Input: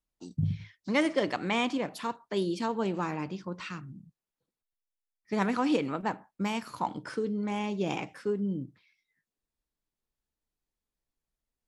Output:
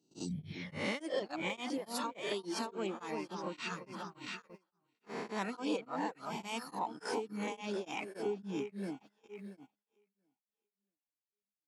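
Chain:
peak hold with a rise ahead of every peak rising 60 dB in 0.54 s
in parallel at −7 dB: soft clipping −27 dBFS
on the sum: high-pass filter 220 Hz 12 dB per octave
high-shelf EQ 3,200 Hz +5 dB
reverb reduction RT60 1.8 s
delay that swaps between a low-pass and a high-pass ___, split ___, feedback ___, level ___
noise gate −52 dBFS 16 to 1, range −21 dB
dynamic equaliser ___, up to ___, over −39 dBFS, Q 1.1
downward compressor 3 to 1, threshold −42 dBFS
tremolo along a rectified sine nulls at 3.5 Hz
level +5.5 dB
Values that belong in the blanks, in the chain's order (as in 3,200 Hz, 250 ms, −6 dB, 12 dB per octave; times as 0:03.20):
341 ms, 1,100 Hz, 51%, −7 dB, 1,600 Hz, −3 dB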